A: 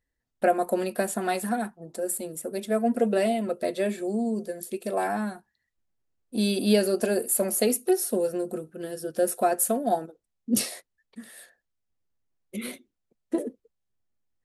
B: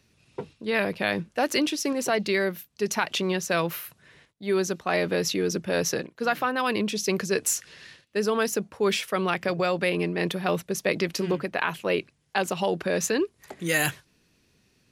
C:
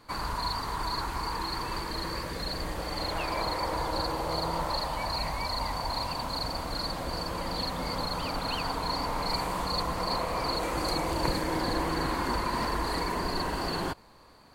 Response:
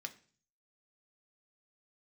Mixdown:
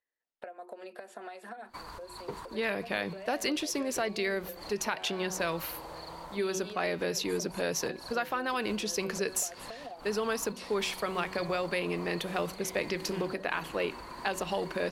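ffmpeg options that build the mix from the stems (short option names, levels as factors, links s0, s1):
-filter_complex "[0:a]acrossover=split=330 5000:gain=0.0891 1 0.0891[s0][s1][s2];[s0][s1][s2]amix=inputs=3:normalize=0,bandreject=f=60:t=h:w=6,bandreject=f=120:t=h:w=6,bandreject=f=180:t=h:w=6,bandreject=f=240:t=h:w=6,bandreject=f=300:t=h:w=6,bandreject=f=360:t=h:w=6,acompressor=threshold=0.0355:ratio=12,volume=0.596,asplit=2[s3][s4];[1:a]bandreject=f=187.7:t=h:w=4,bandreject=f=375.4:t=h:w=4,bandreject=f=563.1:t=h:w=4,bandreject=f=750.8:t=h:w=4,bandreject=f=938.5:t=h:w=4,bandreject=f=1126.2:t=h:w=4,bandreject=f=1313.9:t=h:w=4,bandreject=f=1501.6:t=h:w=4,bandreject=f=1689.3:t=h:w=4,bandreject=f=1877:t=h:w=4,bandreject=f=2064.7:t=h:w=4,bandreject=f=2252.4:t=h:w=4,bandreject=f=2440.1:t=h:w=4,bandreject=f=2627.8:t=h:w=4,bandreject=f=2815.5:t=h:w=4,bandreject=f=3003.2:t=h:w=4,bandreject=f=3190.9:t=h:w=4,bandreject=f=3378.6:t=h:w=4,bandreject=f=3566.3:t=h:w=4,bandreject=f=3754:t=h:w=4,bandreject=f=3941.7:t=h:w=4,bandreject=f=4129.4:t=h:w=4,bandreject=f=4317.1:t=h:w=4,bandreject=f=4504.8:t=h:w=4,bandreject=f=4692.5:t=h:w=4,bandreject=f=4880.2:t=h:w=4,bandreject=f=5067.9:t=h:w=4,adelay=1900,volume=0.708[s5];[2:a]alimiter=limit=0.0841:level=0:latency=1:release=317,adelay=1650,volume=0.631[s6];[s4]apad=whole_len=714006[s7];[s6][s7]sidechaincompress=threshold=0.00282:ratio=6:attack=25:release=130[s8];[s3][s8]amix=inputs=2:normalize=0,acompressor=threshold=0.01:ratio=6,volume=1[s9];[s5][s9]amix=inputs=2:normalize=0,lowshelf=f=180:g=-5.5,acompressor=threshold=0.0355:ratio=2"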